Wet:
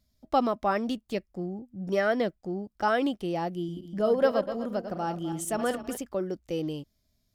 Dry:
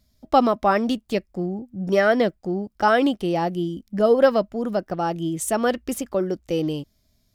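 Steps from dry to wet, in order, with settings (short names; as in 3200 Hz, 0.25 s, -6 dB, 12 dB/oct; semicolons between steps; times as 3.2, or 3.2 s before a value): 3.56–5.97 regenerating reverse delay 0.126 s, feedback 49%, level -8.5 dB; gain -7.5 dB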